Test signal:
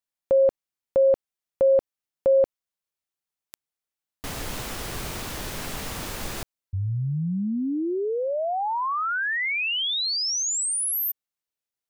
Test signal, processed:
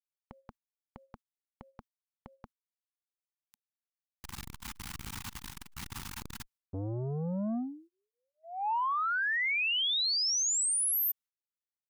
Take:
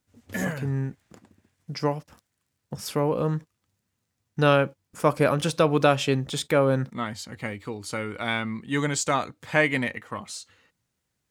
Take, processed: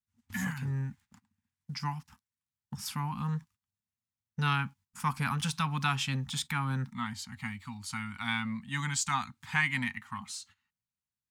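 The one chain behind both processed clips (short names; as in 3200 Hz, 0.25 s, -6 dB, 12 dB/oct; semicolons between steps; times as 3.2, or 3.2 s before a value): elliptic band-stop 240–850 Hz, stop band 40 dB; gate -51 dBFS, range -15 dB; core saturation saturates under 480 Hz; gain -3.5 dB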